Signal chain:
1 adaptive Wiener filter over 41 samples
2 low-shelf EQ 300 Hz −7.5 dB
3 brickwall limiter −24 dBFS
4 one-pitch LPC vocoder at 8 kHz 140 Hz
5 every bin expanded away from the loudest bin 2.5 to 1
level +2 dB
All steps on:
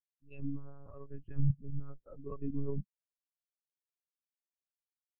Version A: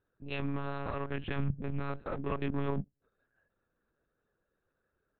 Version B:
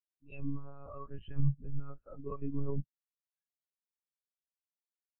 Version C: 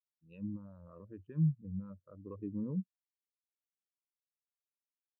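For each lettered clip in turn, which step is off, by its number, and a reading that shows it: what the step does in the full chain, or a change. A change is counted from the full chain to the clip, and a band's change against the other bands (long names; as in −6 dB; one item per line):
5, 1 kHz band +14.5 dB
1, 1 kHz band +7.5 dB
4, 250 Hz band +8.0 dB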